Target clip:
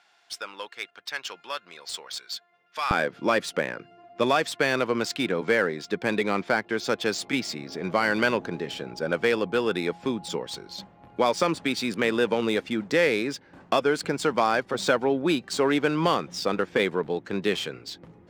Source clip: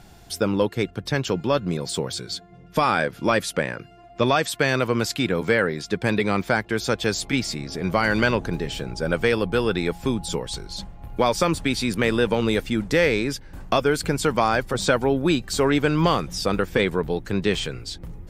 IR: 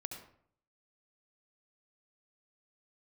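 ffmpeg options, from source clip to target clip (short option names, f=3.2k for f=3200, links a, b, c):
-af "asetnsamples=n=441:p=0,asendcmd='2.91 highpass f 220',highpass=1.3k,adynamicsmooth=sensitivity=4.5:basefreq=4.1k,volume=-2dB"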